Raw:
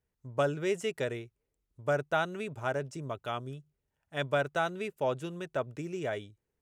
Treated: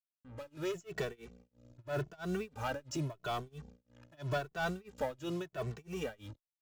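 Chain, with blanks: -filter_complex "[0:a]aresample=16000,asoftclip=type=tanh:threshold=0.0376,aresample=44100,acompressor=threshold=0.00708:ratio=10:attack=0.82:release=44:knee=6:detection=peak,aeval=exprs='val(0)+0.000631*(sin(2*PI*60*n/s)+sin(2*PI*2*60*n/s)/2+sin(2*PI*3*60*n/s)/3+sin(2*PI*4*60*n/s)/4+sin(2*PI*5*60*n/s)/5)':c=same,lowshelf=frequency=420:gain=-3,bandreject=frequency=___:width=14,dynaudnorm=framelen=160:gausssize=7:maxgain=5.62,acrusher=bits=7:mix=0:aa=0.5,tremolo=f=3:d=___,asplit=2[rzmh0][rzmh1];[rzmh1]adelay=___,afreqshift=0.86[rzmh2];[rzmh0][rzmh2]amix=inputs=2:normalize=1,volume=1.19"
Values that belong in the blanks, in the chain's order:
2100, 0.98, 2.2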